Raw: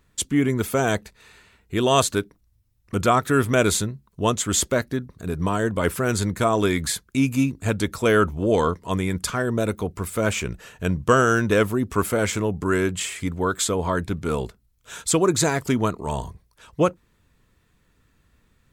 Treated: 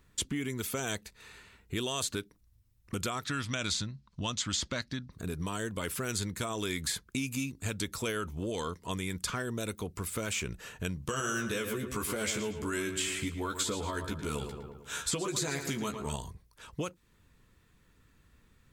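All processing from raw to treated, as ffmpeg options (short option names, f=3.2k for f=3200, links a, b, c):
-filter_complex "[0:a]asettb=1/sr,asplit=3[a][b][c];[a]atrim=end=3.244[d];[b]atrim=start=3.24:end=5.12,asetpts=PTS-STARTPTS,afade=t=in:d=0.004:c=qsin,afade=t=out:st=1.876:d=0.004:c=qsin,lowpass=f=4.9k:t=q:w=1.9,equalizer=f=410:w=3.1:g=-13[e];[c]atrim=start=5.116[f];[d][e]acrossfade=d=0.004:c1=hsin:c2=qsin[g];[g][f]acrossfade=d=0.004:c1=qsin:c2=hsin,asettb=1/sr,asplit=3[h][i][j];[h]atrim=end=11.024[k];[i]atrim=start=11.02:end=16.16,asetpts=PTS-STARTPTS,afade=t=in:d=0.004:c=qsin,afade=t=out:st=5.136:d=0.004:c=qsin,asplit=2[l][m];[m]adelay=14,volume=-3.5dB[n];[l][n]amix=inputs=2:normalize=0,atrim=end_sample=226674,asplit=2[o][p];[p]adelay=112,lowpass=f=4.3k:p=1,volume=-10.5dB,asplit=2[q][r];[r]adelay=112,lowpass=f=4.3k:p=1,volume=0.46,asplit=2[s][t];[t]adelay=112,lowpass=f=4.3k:p=1,volume=0.46,asplit=2[u][v];[v]adelay=112,lowpass=f=4.3k:p=1,volume=0.46,asplit=2[w][x];[x]adelay=112,lowpass=f=4.3k:p=1,volume=0.46[y];[o][q][s][u][w][y]amix=inputs=6:normalize=0,atrim=end_sample=226674[z];[j]atrim=start=16.156[aa];[k][z]acrossfade=d=0.004:c1=hsin:c2=qsin[ab];[ab][aa]acrossfade=d=0.004:c1=qsin:c2=hsin,alimiter=limit=-12dB:level=0:latency=1,acrossover=split=2500|5200[ac][ad][ae];[ac]acompressor=threshold=-33dB:ratio=4[af];[ad]acompressor=threshold=-35dB:ratio=4[ag];[ae]acompressor=threshold=-35dB:ratio=4[ah];[af][ag][ah]amix=inputs=3:normalize=0,equalizer=f=660:w=2.6:g=-3,volume=-1.5dB"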